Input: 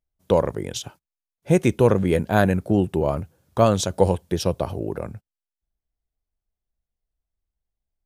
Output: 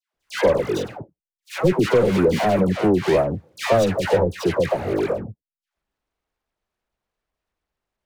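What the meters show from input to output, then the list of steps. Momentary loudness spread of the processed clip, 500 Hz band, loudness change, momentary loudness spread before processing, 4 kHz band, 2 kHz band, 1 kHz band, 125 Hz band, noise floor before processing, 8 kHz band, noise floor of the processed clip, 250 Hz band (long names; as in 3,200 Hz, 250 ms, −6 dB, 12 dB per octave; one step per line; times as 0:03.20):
11 LU, +3.0 dB, +1.5 dB, 13 LU, +2.0 dB, +3.5 dB, +1.0 dB, −2.5 dB, below −85 dBFS, −4.0 dB, below −85 dBFS, +1.0 dB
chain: running median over 41 samples
mid-hump overdrive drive 27 dB, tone 7,300 Hz, clips at −4.5 dBFS
all-pass dispersion lows, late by 147 ms, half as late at 1,100 Hz
level −3.5 dB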